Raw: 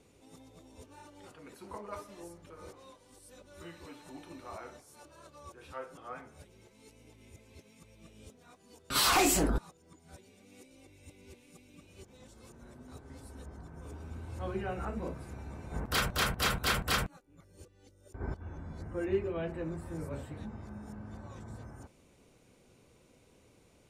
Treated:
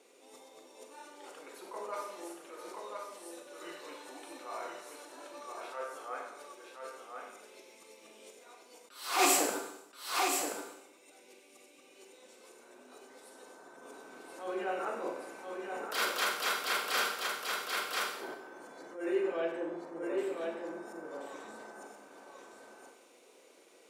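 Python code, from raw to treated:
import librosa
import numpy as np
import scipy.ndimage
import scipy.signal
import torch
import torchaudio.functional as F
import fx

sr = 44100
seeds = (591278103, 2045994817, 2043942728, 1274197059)

y = fx.lowpass(x, sr, hz=1200.0, slope=12, at=(19.58, 20.18))
y = y + 10.0 ** (-4.5 / 20.0) * np.pad(y, (int(1028 * sr / 1000.0), 0))[:len(y)]
y = fx.rev_schroeder(y, sr, rt60_s=0.82, comb_ms=32, drr_db=3.5)
y = fx.rider(y, sr, range_db=3, speed_s=2.0)
y = scipy.signal.sosfilt(scipy.signal.butter(4, 350.0, 'highpass', fs=sr, output='sos'), y)
y = fx.attack_slew(y, sr, db_per_s=110.0)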